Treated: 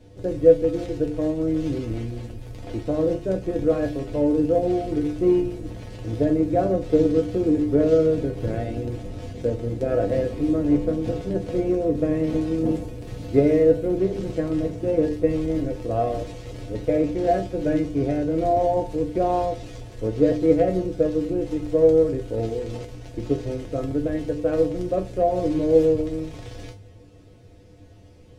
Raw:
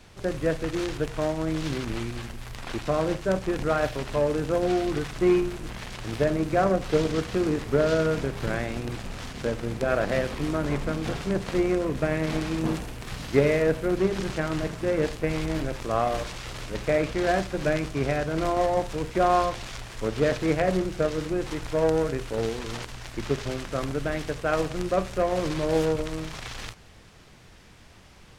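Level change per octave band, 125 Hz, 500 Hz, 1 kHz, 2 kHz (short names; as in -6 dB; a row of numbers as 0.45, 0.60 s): +2.0, +4.5, -1.0, -10.0 dB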